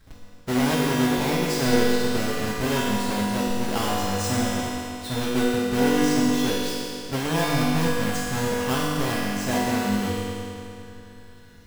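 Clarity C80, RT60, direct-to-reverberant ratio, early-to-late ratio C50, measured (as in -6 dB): -1.5 dB, 2.8 s, -8.0 dB, -3.5 dB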